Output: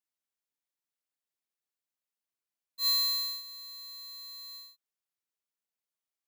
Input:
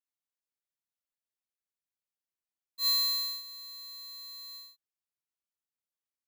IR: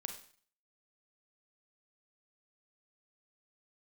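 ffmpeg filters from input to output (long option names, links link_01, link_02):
-af "highpass=150"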